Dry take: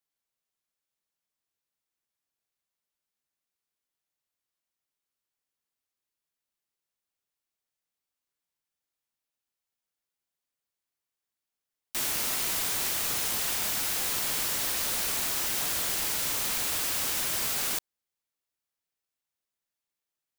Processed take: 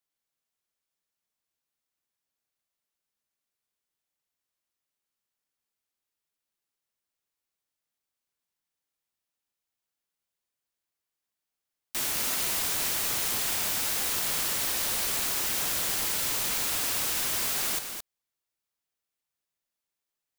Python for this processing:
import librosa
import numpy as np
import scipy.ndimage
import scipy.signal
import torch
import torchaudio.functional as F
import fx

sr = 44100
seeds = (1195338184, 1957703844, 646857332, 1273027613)

y = x + 10.0 ** (-7.5 / 20.0) * np.pad(x, (int(218 * sr / 1000.0), 0))[:len(x)]